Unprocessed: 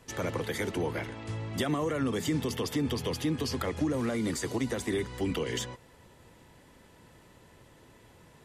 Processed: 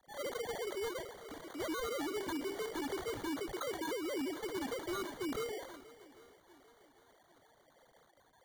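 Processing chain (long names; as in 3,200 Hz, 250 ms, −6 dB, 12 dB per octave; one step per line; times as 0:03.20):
three sine waves on the formant tracks
0:02.07–0:02.82: mains-hum notches 50/100/150/200/250/300/350/400/450 Hz
in parallel at +1 dB: downward compressor 4 to 1, threshold −45 dBFS, peak gain reduction 19 dB
on the sum: decimation without filtering 17×
wave folding −25.5 dBFS
feedback echo with a long and a short gap by turns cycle 797 ms, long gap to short 1.5 to 1, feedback 37%, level −19 dB
level that may fall only so fast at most 82 dB per second
level −7.5 dB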